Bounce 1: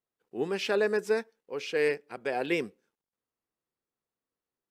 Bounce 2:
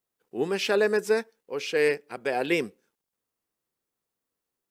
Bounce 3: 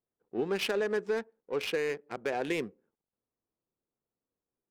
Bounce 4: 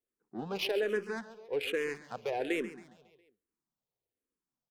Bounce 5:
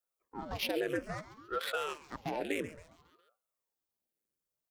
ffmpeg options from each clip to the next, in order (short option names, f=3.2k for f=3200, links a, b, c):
-af "highshelf=f=7k:g=6.5,volume=3.5dB"
-af "alimiter=limit=-21dB:level=0:latency=1:release=201,adynamicsmooth=sensitivity=7.5:basefreq=960"
-filter_complex "[0:a]asplit=2[a][b];[b]aecho=0:1:137|274|411|548|685:0.224|0.116|0.0605|0.0315|0.0164[c];[a][c]amix=inputs=2:normalize=0,asplit=2[d][e];[e]afreqshift=-1.2[f];[d][f]amix=inputs=2:normalize=1"
-af "crystalizer=i=1:c=0,aeval=exprs='val(0)*sin(2*PI*510*n/s+510*0.9/0.59*sin(2*PI*0.59*n/s))':c=same"